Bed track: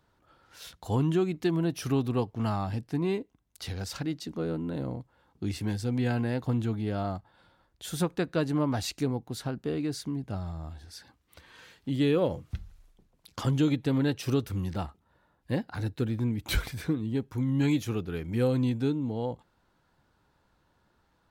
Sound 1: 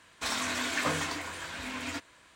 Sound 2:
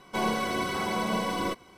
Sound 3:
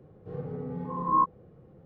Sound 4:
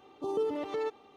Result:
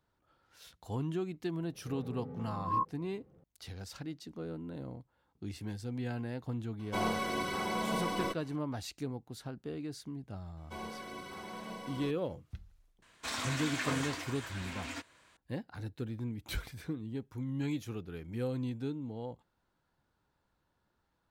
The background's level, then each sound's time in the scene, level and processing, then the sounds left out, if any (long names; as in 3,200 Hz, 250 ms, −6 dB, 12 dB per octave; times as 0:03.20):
bed track −9.5 dB
0:01.59: mix in 3 −8.5 dB
0:06.79: mix in 2 −5 dB
0:10.57: mix in 2 −15.5 dB
0:13.02: mix in 1 −5.5 dB
not used: 4